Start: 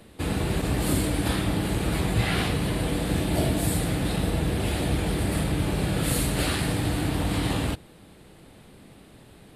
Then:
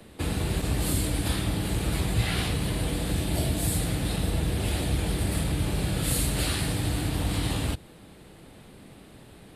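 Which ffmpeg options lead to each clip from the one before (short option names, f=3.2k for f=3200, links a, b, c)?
-filter_complex "[0:a]acrossover=split=120|3000[a][b][c];[b]acompressor=threshold=-33dB:ratio=2.5[d];[a][d][c]amix=inputs=3:normalize=0,volume=1dB"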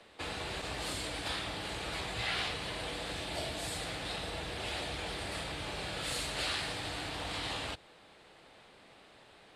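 -filter_complex "[0:a]acrossover=split=490 7100:gain=0.141 1 0.0708[a][b][c];[a][b][c]amix=inputs=3:normalize=0,volume=-2dB"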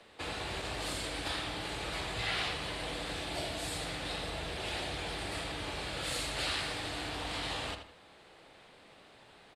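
-filter_complex "[0:a]asplit=2[a][b];[b]adelay=80,lowpass=f=4.2k:p=1,volume=-7.5dB,asplit=2[c][d];[d]adelay=80,lowpass=f=4.2k:p=1,volume=0.33,asplit=2[e][f];[f]adelay=80,lowpass=f=4.2k:p=1,volume=0.33,asplit=2[g][h];[h]adelay=80,lowpass=f=4.2k:p=1,volume=0.33[i];[a][c][e][g][i]amix=inputs=5:normalize=0"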